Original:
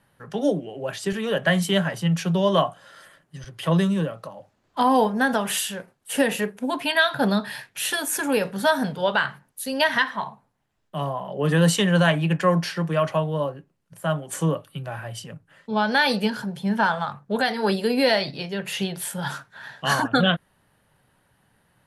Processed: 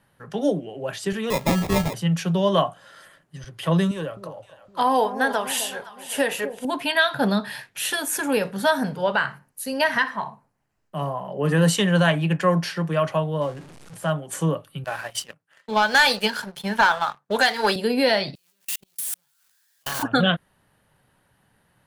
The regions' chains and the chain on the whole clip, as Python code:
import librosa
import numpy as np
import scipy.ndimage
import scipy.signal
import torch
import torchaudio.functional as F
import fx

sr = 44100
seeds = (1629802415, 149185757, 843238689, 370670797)

y = fx.chain(x, sr, fx.highpass(hz=57.0, slope=12),
    fx.sample_hold(seeds[0], rate_hz=1500.0, jitter_pct=0), at=(1.3, 1.94))
y = fx.chain(y, sr, fx.peak_eq(hz=200.0, db=-12.5, octaves=0.74),
    fx.echo_alternate(ms=257, hz=830.0, feedback_pct=55, wet_db=-10), at=(3.91, 6.65))
y = fx.chain(y, sr, fx.peak_eq(hz=3500.0, db=-9.5, octaves=0.3),
    fx.room_flutter(wall_m=10.7, rt60_s=0.2), at=(8.8, 11.67))
y = fx.chain(y, sr, fx.zero_step(step_db=-39.0),
    fx.lowpass(hz=11000.0, slope=24), at=(13.41, 14.1))
y = fx.chain(y, sr, fx.highpass(hz=960.0, slope=6),
    fx.transient(attack_db=3, sustain_db=-3),
    fx.leveller(passes=2), at=(14.84, 17.76))
y = fx.chain(y, sr, fx.crossing_spikes(level_db=-15.5),
    fx.level_steps(step_db=22),
    fx.power_curve(exponent=2.0), at=(18.35, 20.03))